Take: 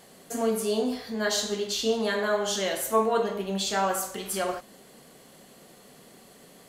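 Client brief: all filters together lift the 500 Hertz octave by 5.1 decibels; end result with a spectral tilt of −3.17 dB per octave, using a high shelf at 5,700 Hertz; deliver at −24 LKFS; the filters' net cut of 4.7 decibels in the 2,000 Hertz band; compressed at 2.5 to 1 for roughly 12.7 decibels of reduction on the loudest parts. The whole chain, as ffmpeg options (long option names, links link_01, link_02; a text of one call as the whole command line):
ffmpeg -i in.wav -af "equalizer=frequency=500:width_type=o:gain=6.5,equalizer=frequency=2000:width_type=o:gain=-7.5,highshelf=frequency=5700:gain=6,acompressor=threshold=-36dB:ratio=2.5,volume=10.5dB" out.wav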